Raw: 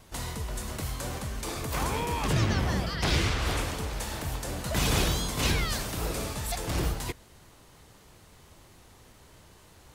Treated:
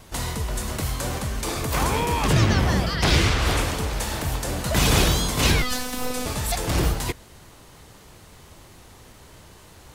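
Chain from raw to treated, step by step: 5.62–6.26 s: robot voice 251 Hz; trim +7 dB

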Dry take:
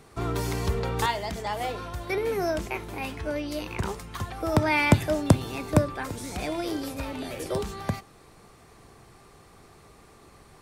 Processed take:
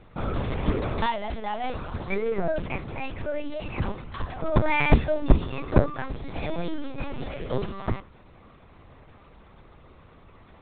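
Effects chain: hum notches 60/120/180/240/300/360/420/480 Hz; LPC vocoder at 8 kHz pitch kept; bass shelf 250 Hz +4.5 dB

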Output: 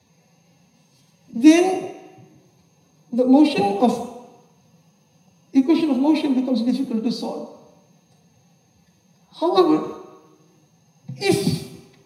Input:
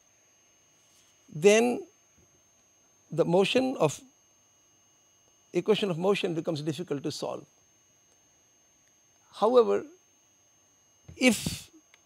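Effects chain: formant-preserving pitch shift +7.5 st; reverberation RT60 1.0 s, pre-delay 3 ms, DRR 2.5 dB; trim -3 dB

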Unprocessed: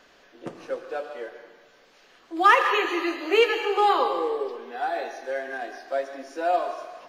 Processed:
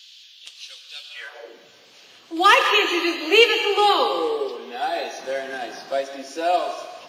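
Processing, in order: resonant high shelf 2.3 kHz +7 dB, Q 1.5; 5.18–6.00 s: band noise 170–1400 Hz -51 dBFS; high-pass sweep 3.5 kHz -> 96 Hz, 1.09–1.75 s; trim +3 dB

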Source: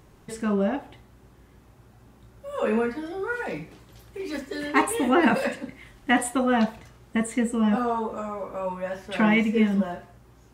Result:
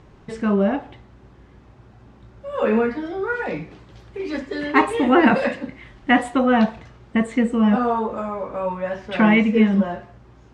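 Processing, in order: distance through air 130 m; trim +5.5 dB

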